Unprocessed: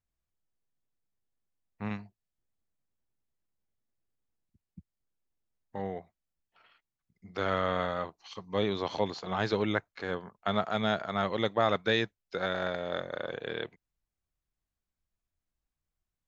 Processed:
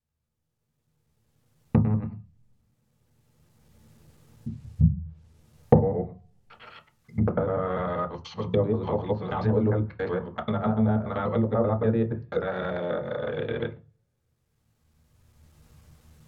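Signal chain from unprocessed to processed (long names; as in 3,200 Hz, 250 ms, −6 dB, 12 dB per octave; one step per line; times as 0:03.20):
reversed piece by piece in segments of 97 ms
camcorder AGC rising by 14 dB per second
on a send at −1.5 dB: convolution reverb RT60 0.30 s, pre-delay 3 ms
on the sum: treble cut that deepens with the level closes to 950 Hz, closed at −19.5 dBFS
level −1.5 dB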